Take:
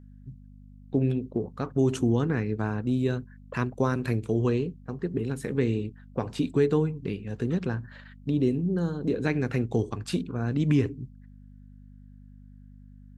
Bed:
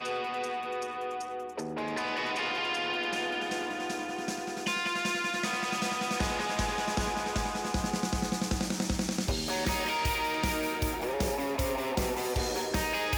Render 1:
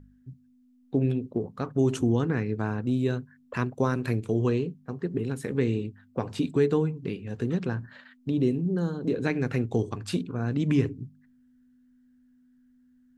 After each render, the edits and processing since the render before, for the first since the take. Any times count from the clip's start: de-hum 50 Hz, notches 4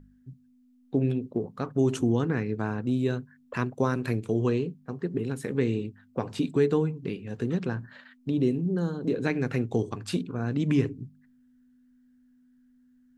bell 77 Hz -7 dB 0.68 oct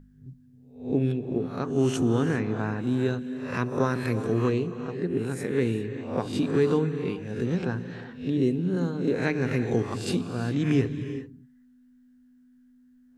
spectral swells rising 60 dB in 0.46 s; non-linear reverb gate 0.42 s rising, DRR 10.5 dB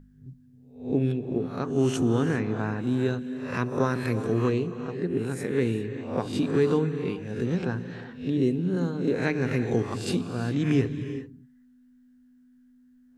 nothing audible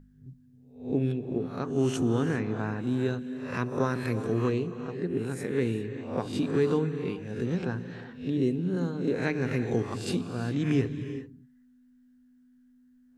gain -2.5 dB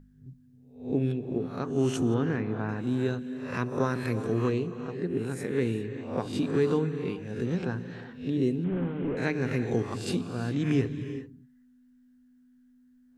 2.14–2.69 air absorption 170 m; 8.64–9.17 delta modulation 16 kbps, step -44.5 dBFS

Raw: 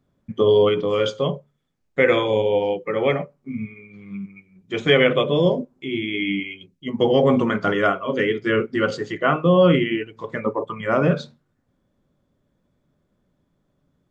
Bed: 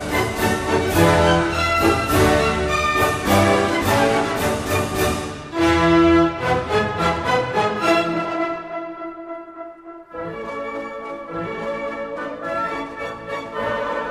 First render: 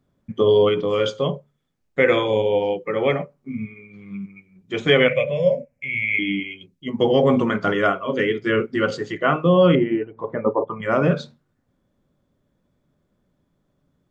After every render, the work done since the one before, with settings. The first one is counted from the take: 5.08–6.19 EQ curve 120 Hz 0 dB, 240 Hz -12 dB, 340 Hz -30 dB, 550 Hz +5 dB, 850 Hz -14 dB, 1300 Hz -12 dB, 2300 Hz +12 dB, 3500 Hz -16 dB, 5300 Hz -3 dB; 9.75–10.82 EQ curve 170 Hz 0 dB, 810 Hz +6 dB, 5500 Hz -24 dB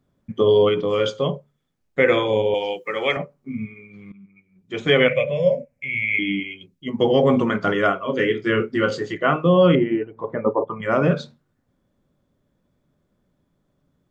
2.54–3.17 tilt +4 dB/oct; 4.12–5.03 fade in, from -19.5 dB; 8.15–9.14 doubler 26 ms -9 dB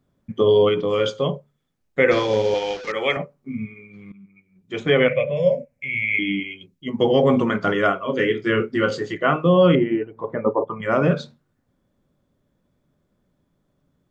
2.11–2.92 delta modulation 32 kbps, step -29.5 dBFS; 4.83–5.37 high shelf 3800 Hz -11 dB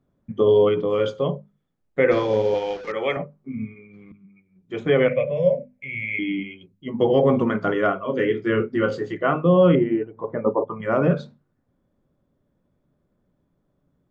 high shelf 2200 Hz -11.5 dB; notches 50/100/150/200/250 Hz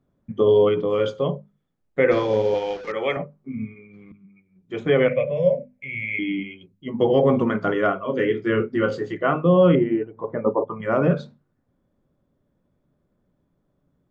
nothing audible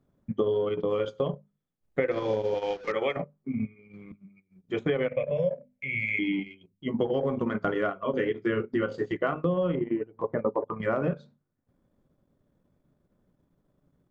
compressor 6:1, threshold -24 dBFS, peak gain reduction 12 dB; transient shaper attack +1 dB, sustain -11 dB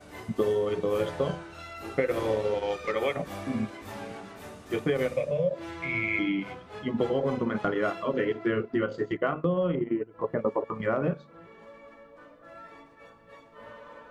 add bed -23.5 dB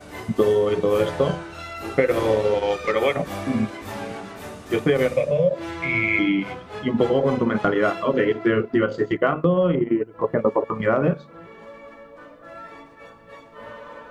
gain +7.5 dB

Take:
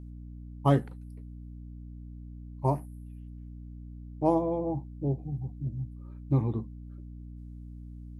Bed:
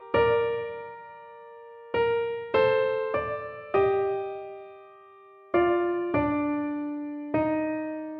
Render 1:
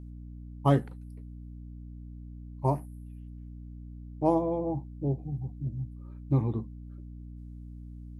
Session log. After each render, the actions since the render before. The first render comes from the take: nothing audible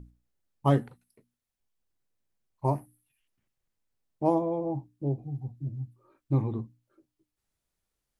notches 60/120/180/240/300 Hz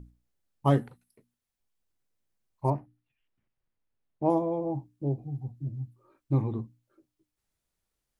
2.7–4.3 air absorption 240 m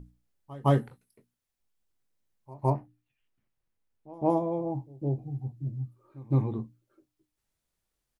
doubler 23 ms -12.5 dB; pre-echo 0.162 s -21 dB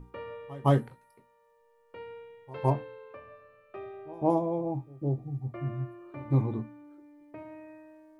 add bed -19.5 dB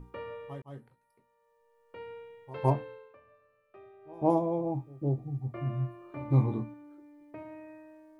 0.62–2.1 fade in; 2.91–4.25 dip -11 dB, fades 0.24 s; 5.52–6.74 doubler 24 ms -6 dB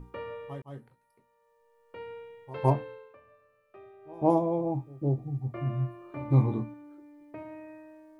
gain +2 dB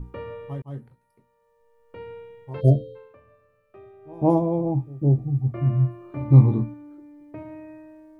2.61–2.96 spectral delete 700–2700 Hz; low shelf 290 Hz +12 dB

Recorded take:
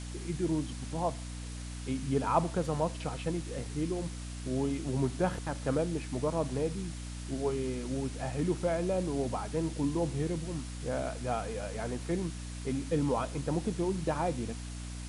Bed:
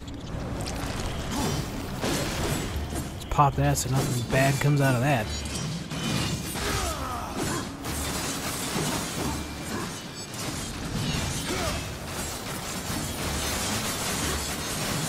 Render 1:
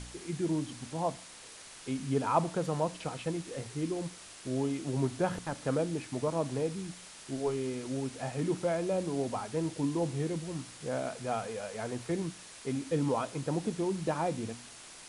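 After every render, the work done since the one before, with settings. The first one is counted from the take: de-hum 60 Hz, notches 5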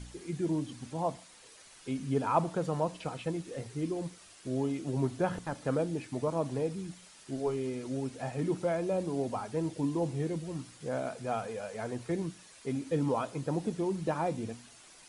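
denoiser 8 dB, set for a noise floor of -50 dBFS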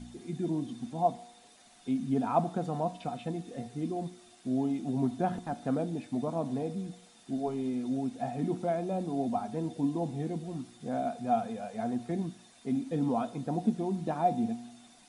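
resonator 120 Hz, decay 1 s, harmonics all, mix 50%; small resonant body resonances 230/710/3600 Hz, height 16 dB, ringing for 55 ms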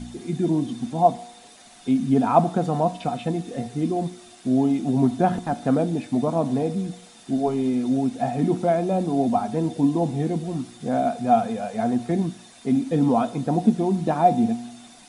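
gain +10 dB

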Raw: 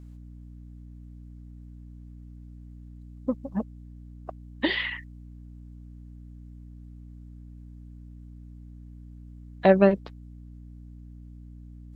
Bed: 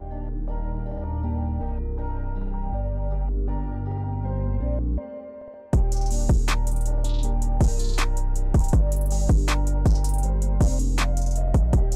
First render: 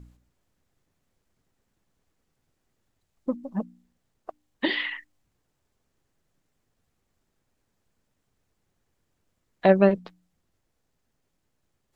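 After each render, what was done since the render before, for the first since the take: de-hum 60 Hz, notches 5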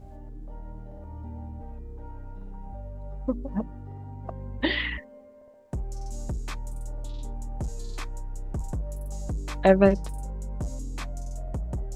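add bed -12.5 dB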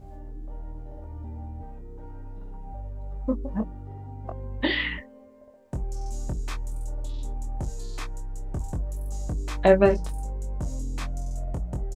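doubler 23 ms -5.5 dB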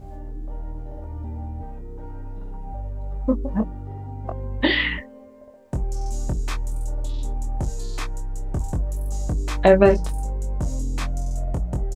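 gain +5.5 dB; limiter -3 dBFS, peak gain reduction 3 dB

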